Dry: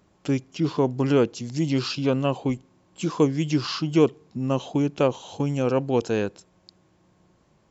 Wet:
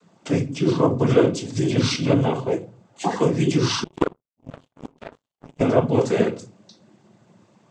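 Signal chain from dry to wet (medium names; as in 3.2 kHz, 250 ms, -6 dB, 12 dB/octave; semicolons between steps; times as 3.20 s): 2.24–3.14 s: ring modulator 130 Hz -> 640 Hz; in parallel at -1 dB: peak limiter -18.5 dBFS, peak gain reduction 11.5 dB; on the sum: simulated room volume 170 m³, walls furnished, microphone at 1.1 m; noise-vocoded speech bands 16; 3.84–5.61 s: power-law waveshaper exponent 3; trim -1.5 dB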